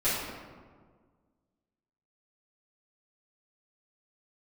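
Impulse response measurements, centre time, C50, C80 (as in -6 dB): 92 ms, -1.0 dB, 2.0 dB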